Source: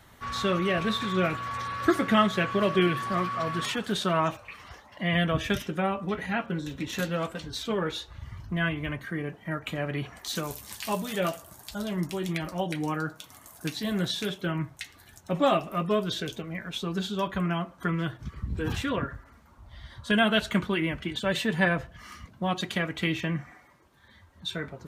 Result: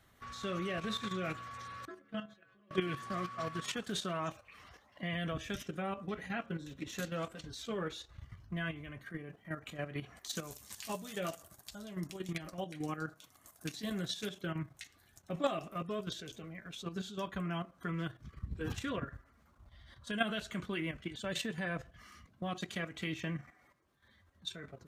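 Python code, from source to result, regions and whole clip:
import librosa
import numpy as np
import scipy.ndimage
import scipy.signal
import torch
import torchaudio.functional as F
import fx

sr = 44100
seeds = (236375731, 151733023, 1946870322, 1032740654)

y = fx.chain(x, sr, fx.high_shelf(hz=6700.0, db=-11.5),
    fx.level_steps(step_db=21),
    fx.stiff_resonator(f0_hz=67.0, decay_s=0.41, stiffness=0.008), at=(1.85, 2.71))
y = fx.notch(y, sr, hz=910.0, q=8.3)
y = fx.dynamic_eq(y, sr, hz=6800.0, q=1.5, threshold_db=-53.0, ratio=4.0, max_db=6)
y = fx.level_steps(y, sr, step_db=10)
y = y * librosa.db_to_amplitude(-6.5)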